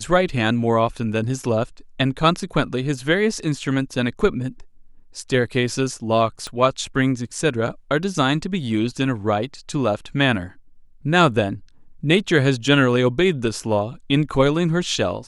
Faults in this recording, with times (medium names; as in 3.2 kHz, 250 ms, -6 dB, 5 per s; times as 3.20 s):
6.47 s: pop -17 dBFS